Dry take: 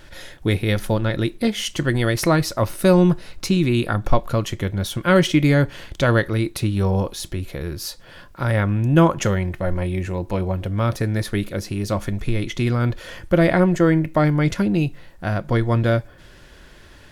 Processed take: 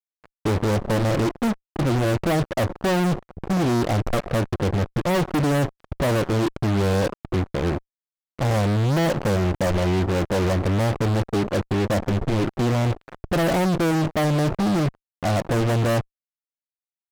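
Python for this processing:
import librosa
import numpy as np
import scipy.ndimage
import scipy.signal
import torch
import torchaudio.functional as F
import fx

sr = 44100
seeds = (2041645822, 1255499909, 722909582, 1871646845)

p1 = scipy.signal.sosfilt(scipy.signal.butter(12, 800.0, 'lowpass', fs=sr, output='sos'), x)
p2 = fx.low_shelf(p1, sr, hz=80.0, db=-6.5)
p3 = fx.level_steps(p2, sr, step_db=14)
p4 = p2 + (p3 * librosa.db_to_amplitude(-2.5))
p5 = fx.fuzz(p4, sr, gain_db=35.0, gate_db=-32.0)
y = p5 * librosa.db_to_amplitude(-5.5)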